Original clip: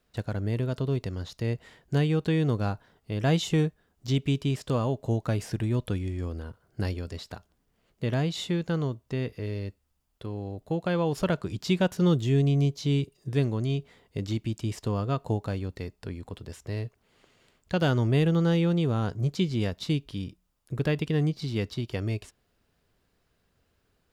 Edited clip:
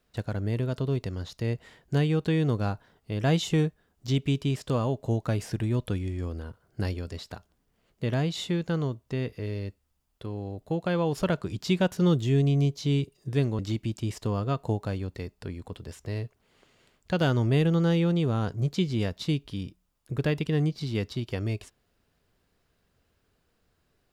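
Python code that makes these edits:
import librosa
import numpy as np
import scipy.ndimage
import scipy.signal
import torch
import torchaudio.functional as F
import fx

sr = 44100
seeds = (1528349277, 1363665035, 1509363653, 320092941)

y = fx.edit(x, sr, fx.cut(start_s=13.59, length_s=0.61), tone=tone)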